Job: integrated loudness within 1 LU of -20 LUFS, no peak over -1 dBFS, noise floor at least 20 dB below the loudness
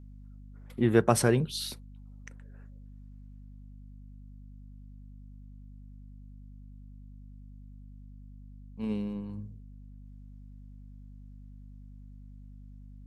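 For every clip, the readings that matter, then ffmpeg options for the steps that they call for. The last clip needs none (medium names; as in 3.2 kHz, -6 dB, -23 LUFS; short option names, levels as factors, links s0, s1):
hum 50 Hz; highest harmonic 250 Hz; hum level -45 dBFS; loudness -29.0 LUFS; peak level -7.0 dBFS; loudness target -20.0 LUFS
-> -af "bandreject=f=50:t=h:w=4,bandreject=f=100:t=h:w=4,bandreject=f=150:t=h:w=4,bandreject=f=200:t=h:w=4,bandreject=f=250:t=h:w=4"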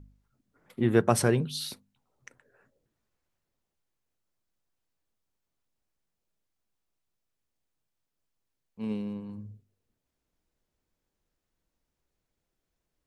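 hum not found; loudness -28.5 LUFS; peak level -7.5 dBFS; loudness target -20.0 LUFS
-> -af "volume=2.66,alimiter=limit=0.891:level=0:latency=1"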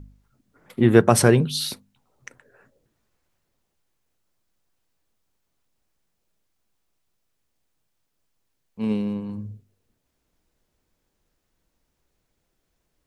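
loudness -20.5 LUFS; peak level -1.0 dBFS; noise floor -75 dBFS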